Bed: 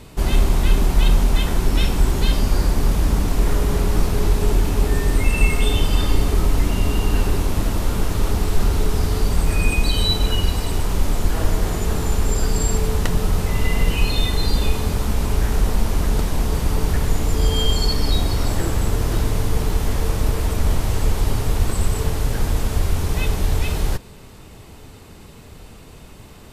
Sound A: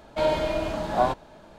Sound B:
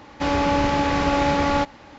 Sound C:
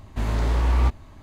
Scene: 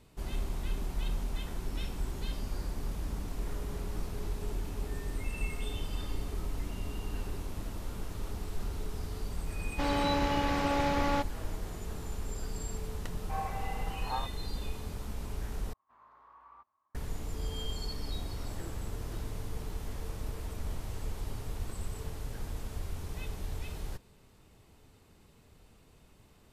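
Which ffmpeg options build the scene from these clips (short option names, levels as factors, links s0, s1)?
-filter_complex "[0:a]volume=0.119[s0];[1:a]highpass=f=320:t=q:w=0.5412,highpass=f=320:t=q:w=1.307,lowpass=f=2300:t=q:w=0.5176,lowpass=f=2300:t=q:w=0.7071,lowpass=f=2300:t=q:w=1.932,afreqshift=160[s1];[3:a]bandpass=f=1100:t=q:w=6.8:csg=0[s2];[s0]asplit=2[s3][s4];[s3]atrim=end=15.734[s5];[s2]atrim=end=1.22,asetpts=PTS-STARTPTS,volume=0.15[s6];[s4]atrim=start=16.946[s7];[2:a]atrim=end=1.98,asetpts=PTS-STARTPTS,volume=0.335,afade=t=in:d=0.004:c=hsin,afade=t=out:st=1.976:d=0.004:c=hsin,adelay=9580[s8];[s1]atrim=end=1.58,asetpts=PTS-STARTPTS,volume=0.2,afade=t=in:d=0.004:c=hsin,afade=t=out:st=1.576:d=0.004:c=hsin,adelay=13130[s9];[s5][s6]acrossfade=d=0.004:c1=hsin:c2=hsin[s10];[s10][s7]acrossfade=d=0.004:c1=hsin:c2=hsin[s11];[s11][s8][s9]amix=inputs=3:normalize=0"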